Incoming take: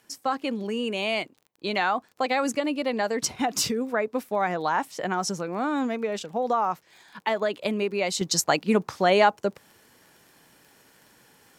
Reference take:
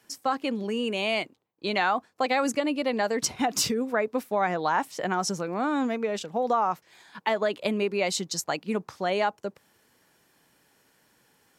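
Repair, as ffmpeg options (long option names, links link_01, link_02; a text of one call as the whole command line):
ffmpeg -i in.wav -af "adeclick=threshold=4,asetnsamples=nb_out_samples=441:pad=0,asendcmd='8.21 volume volume -7dB',volume=0dB" out.wav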